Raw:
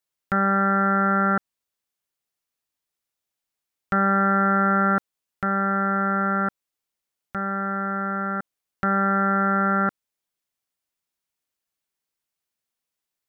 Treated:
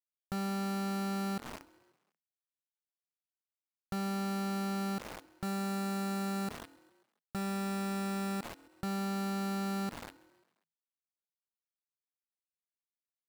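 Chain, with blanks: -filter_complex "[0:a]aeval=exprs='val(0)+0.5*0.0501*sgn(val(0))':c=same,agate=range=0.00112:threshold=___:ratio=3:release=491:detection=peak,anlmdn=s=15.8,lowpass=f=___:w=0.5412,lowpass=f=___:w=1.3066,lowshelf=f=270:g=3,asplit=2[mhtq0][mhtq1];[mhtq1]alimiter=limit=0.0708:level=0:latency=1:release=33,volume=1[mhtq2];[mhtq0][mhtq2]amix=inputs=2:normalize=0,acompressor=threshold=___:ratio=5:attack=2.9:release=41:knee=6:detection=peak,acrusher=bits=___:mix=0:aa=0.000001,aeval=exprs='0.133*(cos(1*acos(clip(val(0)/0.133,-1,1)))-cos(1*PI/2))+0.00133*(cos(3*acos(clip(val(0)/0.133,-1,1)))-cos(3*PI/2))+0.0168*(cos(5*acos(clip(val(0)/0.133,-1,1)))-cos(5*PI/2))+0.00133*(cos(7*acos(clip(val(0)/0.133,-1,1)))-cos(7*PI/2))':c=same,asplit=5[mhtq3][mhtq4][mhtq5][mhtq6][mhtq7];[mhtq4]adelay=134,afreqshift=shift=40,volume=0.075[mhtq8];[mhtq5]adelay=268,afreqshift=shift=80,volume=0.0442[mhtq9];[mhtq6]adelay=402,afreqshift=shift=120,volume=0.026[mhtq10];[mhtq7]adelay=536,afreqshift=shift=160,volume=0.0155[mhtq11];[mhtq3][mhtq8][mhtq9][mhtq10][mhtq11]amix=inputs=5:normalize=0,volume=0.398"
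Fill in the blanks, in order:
0.0398, 1100, 1100, 0.0355, 5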